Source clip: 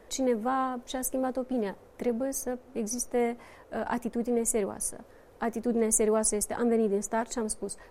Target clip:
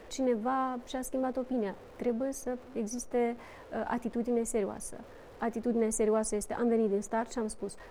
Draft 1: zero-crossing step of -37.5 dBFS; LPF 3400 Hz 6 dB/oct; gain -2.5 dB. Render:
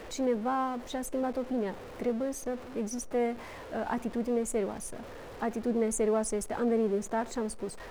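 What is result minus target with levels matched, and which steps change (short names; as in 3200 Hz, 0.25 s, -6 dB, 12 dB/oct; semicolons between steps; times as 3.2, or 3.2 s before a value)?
zero-crossing step: distortion +8 dB
change: zero-crossing step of -46.5 dBFS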